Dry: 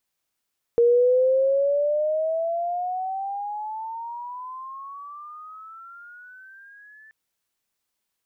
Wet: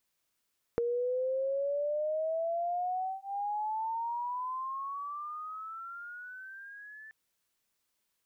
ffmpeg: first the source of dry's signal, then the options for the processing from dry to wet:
-f lavfi -i "aevalsrc='pow(10,(-13.5-33*t/6.33)/20)*sin(2*PI*468*6.33/(23*log(2)/12)*(exp(23*log(2)/12*t/6.33)-1))':d=6.33:s=44100"
-af "bandreject=f=780:w=12,acompressor=threshold=0.0282:ratio=8"

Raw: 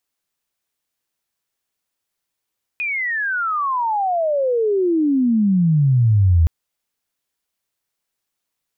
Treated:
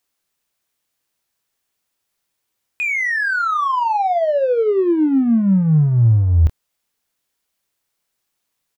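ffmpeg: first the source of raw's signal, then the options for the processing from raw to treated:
-f lavfi -i "aevalsrc='pow(10,(-20+10*t/3.67)/20)*sin(2*PI*2500*3.67/log(78/2500)*(exp(log(78/2500)*t/3.67)-1))':d=3.67:s=44100"
-filter_complex "[0:a]asplit=2[s0][s1];[s1]asoftclip=type=tanh:threshold=0.0447,volume=0.596[s2];[s0][s2]amix=inputs=2:normalize=0,asplit=2[s3][s4];[s4]adelay=26,volume=0.299[s5];[s3][s5]amix=inputs=2:normalize=0"

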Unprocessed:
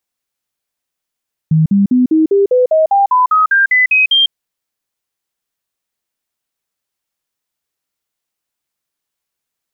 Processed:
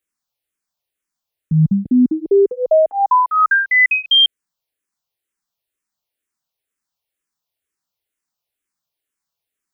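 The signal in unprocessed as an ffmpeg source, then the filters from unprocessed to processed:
-f lavfi -i "aevalsrc='0.447*clip(min(mod(t,0.2),0.15-mod(t,0.2))/0.005,0,1)*sin(2*PI*158*pow(2,floor(t/0.2)/3)*mod(t,0.2))':d=2.8:s=44100"
-filter_complex "[0:a]asplit=2[s0][s1];[s1]afreqshift=-2.1[s2];[s0][s2]amix=inputs=2:normalize=1"

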